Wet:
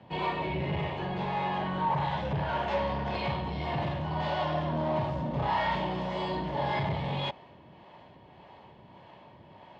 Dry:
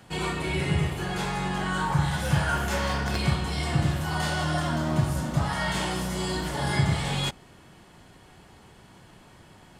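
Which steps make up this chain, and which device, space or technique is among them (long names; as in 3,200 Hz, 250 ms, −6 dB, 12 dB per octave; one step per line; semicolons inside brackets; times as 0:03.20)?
0:05.30–0:05.76: flutter between parallel walls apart 5.4 metres, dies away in 0.72 s
guitar amplifier with harmonic tremolo (two-band tremolo in antiphase 1.7 Hz, depth 50%, crossover 400 Hz; soft clipping −26 dBFS, distortion −11 dB; loudspeaker in its box 83–3,600 Hz, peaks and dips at 590 Hz +9 dB, 940 Hz +9 dB, 1,400 Hz −9 dB)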